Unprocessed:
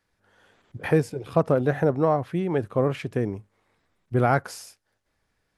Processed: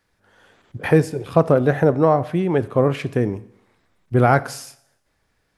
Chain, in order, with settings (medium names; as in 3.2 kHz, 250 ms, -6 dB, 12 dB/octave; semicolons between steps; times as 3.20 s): Schroeder reverb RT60 0.71 s, combs from 25 ms, DRR 16.5 dB; trim +5.5 dB